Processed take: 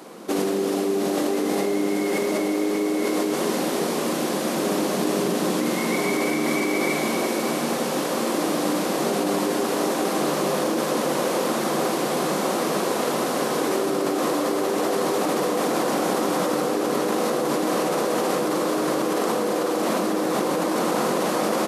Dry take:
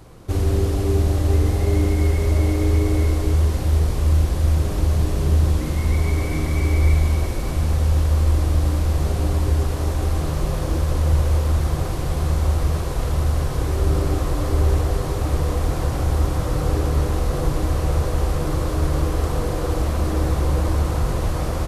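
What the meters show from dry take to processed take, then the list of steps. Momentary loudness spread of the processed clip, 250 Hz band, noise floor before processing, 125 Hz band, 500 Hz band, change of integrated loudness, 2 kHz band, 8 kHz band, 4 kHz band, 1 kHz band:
1 LU, +4.0 dB, -24 dBFS, -19.5 dB, +5.5 dB, -2.0 dB, +6.0 dB, +6.0 dB, +6.0 dB, +6.0 dB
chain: elliptic high-pass 200 Hz, stop band 60 dB; in parallel at +2 dB: negative-ratio compressor -30 dBFS, ratio -0.5

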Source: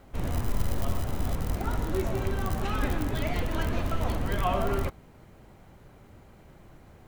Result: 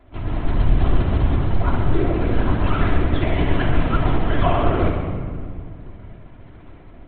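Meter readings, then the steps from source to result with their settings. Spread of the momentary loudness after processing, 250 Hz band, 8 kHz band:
12 LU, +10.5 dB, under -35 dB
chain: AGC gain up to 3.5 dB; LPC vocoder at 8 kHz whisper; shoebox room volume 3500 m³, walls mixed, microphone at 3 m; vibrato 15 Hz 62 cents; gain -1 dB

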